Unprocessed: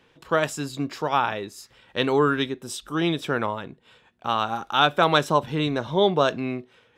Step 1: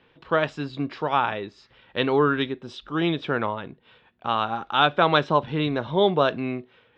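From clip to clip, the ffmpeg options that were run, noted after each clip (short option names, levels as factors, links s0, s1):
-af "lowpass=f=4000:w=0.5412,lowpass=f=4000:w=1.3066"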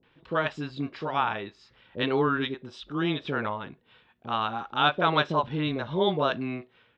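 -filter_complex "[0:a]acrossover=split=550[s0][s1];[s1]adelay=30[s2];[s0][s2]amix=inputs=2:normalize=0,volume=0.708"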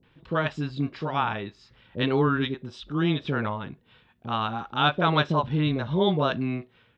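-af "bass=f=250:g=8,treble=f=4000:g=2"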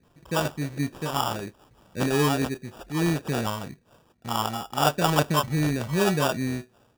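-af "acrusher=samples=21:mix=1:aa=0.000001"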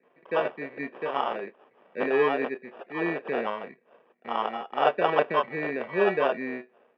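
-af "highpass=f=280:w=0.5412,highpass=f=280:w=1.3066,equalizer=f=300:t=q:w=4:g=-10,equalizer=f=460:t=q:w=4:g=3,equalizer=f=880:t=q:w=4:g=-4,equalizer=f=1400:t=q:w=4:g=-7,equalizer=f=2100:t=q:w=4:g=7,lowpass=f=2300:w=0.5412,lowpass=f=2300:w=1.3066,volume=1.33"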